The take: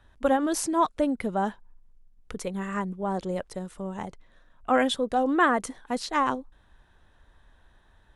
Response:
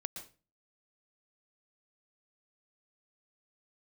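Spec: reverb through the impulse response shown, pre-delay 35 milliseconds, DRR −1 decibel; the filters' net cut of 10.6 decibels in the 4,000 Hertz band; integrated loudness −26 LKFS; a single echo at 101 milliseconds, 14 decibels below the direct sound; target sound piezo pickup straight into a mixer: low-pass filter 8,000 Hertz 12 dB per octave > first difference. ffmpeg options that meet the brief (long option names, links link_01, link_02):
-filter_complex "[0:a]equalizer=frequency=4000:width_type=o:gain=-6,aecho=1:1:101:0.2,asplit=2[link_01][link_02];[1:a]atrim=start_sample=2205,adelay=35[link_03];[link_02][link_03]afir=irnorm=-1:irlink=0,volume=2.5dB[link_04];[link_01][link_04]amix=inputs=2:normalize=0,lowpass=8000,aderivative,volume=13.5dB"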